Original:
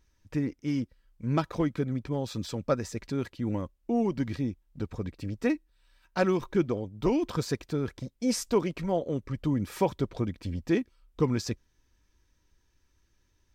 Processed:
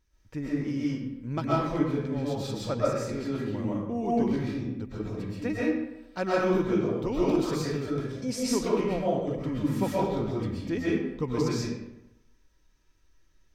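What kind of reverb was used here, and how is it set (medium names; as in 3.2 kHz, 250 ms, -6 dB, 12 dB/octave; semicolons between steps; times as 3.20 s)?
algorithmic reverb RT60 0.91 s, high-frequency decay 0.7×, pre-delay 90 ms, DRR -7 dB; trim -5.5 dB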